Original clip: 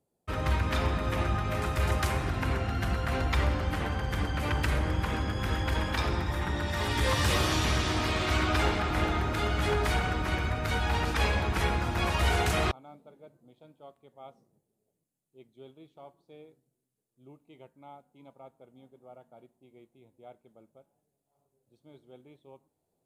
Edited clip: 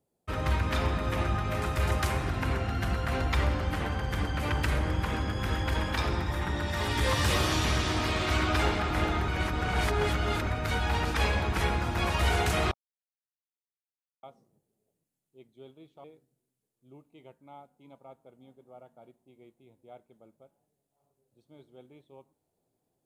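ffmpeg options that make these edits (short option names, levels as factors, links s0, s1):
-filter_complex "[0:a]asplit=6[s0][s1][s2][s3][s4][s5];[s0]atrim=end=9.282[s6];[s1]atrim=start=9.278:end=10.472,asetpts=PTS-STARTPTS,areverse[s7];[s2]atrim=start=10.468:end=12.74,asetpts=PTS-STARTPTS,afade=t=out:st=2.268:d=0.004:c=hsin[s8];[s3]atrim=start=12.74:end=14.23,asetpts=PTS-STARTPTS,volume=0[s9];[s4]atrim=start=14.23:end=16.042,asetpts=PTS-STARTPTS,afade=t=in:d=0.004:c=hsin[s10];[s5]atrim=start=16.388[s11];[s6][s7]acrossfade=d=0.004:c1=hsin:c2=hsin[s12];[s8][s9][s10]concat=n=3:v=0:a=1[s13];[s12][s13]acrossfade=d=0.004:c1=hsin:c2=hsin[s14];[s14][s11]acrossfade=d=0.004:c1=hsin:c2=hsin"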